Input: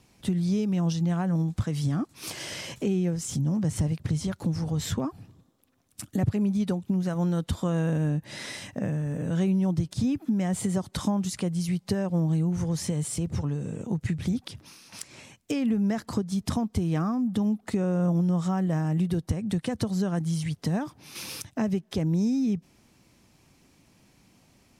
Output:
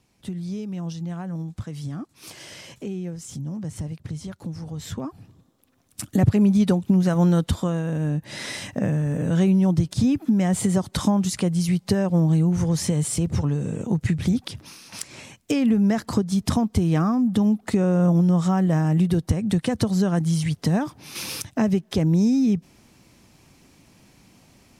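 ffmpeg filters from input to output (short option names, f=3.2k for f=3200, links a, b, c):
-af "volume=15dB,afade=t=in:st=4.82:d=1.57:silence=0.223872,afade=t=out:st=7.34:d=0.49:silence=0.354813,afade=t=in:st=7.83:d=0.77:silence=0.446684"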